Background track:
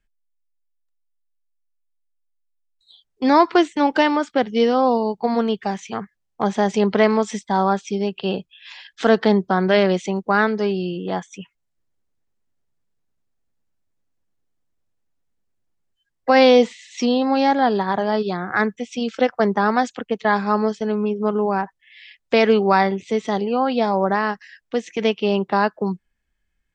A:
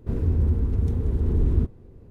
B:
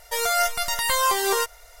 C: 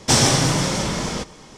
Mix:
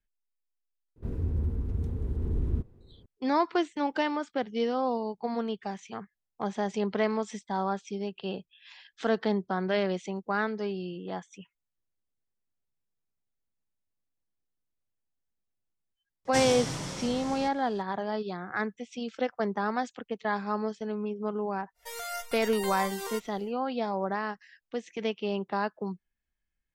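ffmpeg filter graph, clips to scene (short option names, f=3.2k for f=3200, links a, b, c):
-filter_complex "[0:a]volume=-11.5dB[a];[1:a]atrim=end=2.1,asetpts=PTS-STARTPTS,volume=-8dB,afade=t=in:d=0.004:c=hsin,afade=t=out:st=2.096:d=0.004:c=hsin,adelay=960[b];[3:a]atrim=end=1.57,asetpts=PTS-STARTPTS,volume=-16dB,afade=t=in:d=0.004:c=hsin,afade=t=out:st=1.566:d=0.004:c=hsin,adelay=16250[c];[2:a]atrim=end=1.8,asetpts=PTS-STARTPTS,volume=-15dB,afade=t=in:d=0.1,afade=t=out:st=1.7:d=0.1,adelay=21740[d];[a][b][c][d]amix=inputs=4:normalize=0"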